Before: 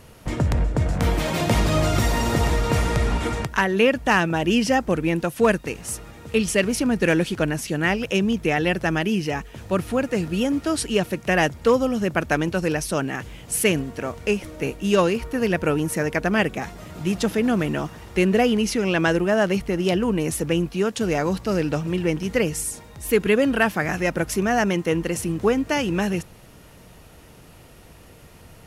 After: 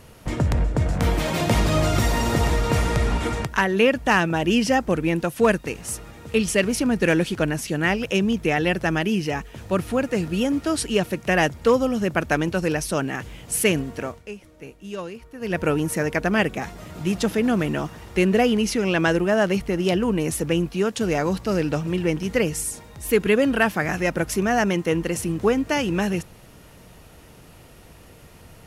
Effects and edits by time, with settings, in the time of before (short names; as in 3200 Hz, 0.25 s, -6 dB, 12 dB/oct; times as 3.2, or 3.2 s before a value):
14.02–15.6 dip -14 dB, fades 0.21 s